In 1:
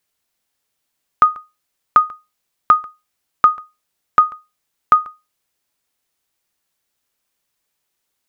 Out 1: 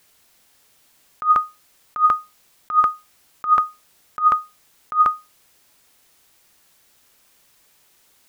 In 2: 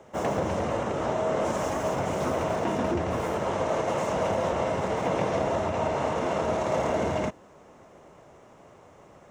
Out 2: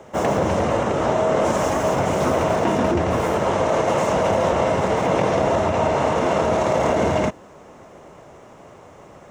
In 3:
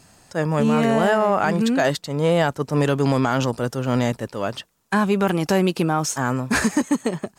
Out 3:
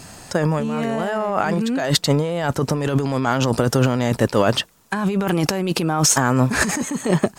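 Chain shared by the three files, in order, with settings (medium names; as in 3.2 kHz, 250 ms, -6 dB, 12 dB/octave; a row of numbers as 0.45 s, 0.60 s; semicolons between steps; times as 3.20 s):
compressor with a negative ratio -26 dBFS, ratio -1; normalise loudness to -20 LUFS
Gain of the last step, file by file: +7.5 dB, +8.0 dB, +6.5 dB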